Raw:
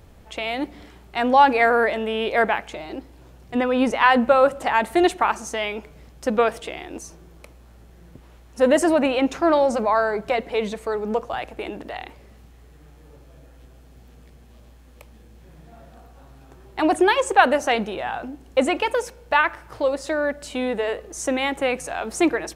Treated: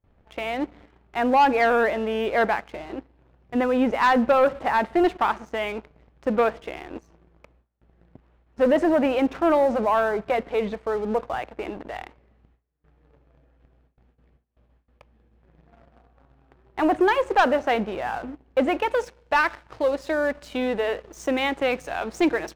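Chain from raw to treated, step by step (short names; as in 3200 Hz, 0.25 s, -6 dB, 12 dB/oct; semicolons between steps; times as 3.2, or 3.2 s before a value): gate with hold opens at -40 dBFS; LPF 2300 Hz 12 dB/oct, from 18.91 s 4800 Hz; sample leveller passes 2; gain -8 dB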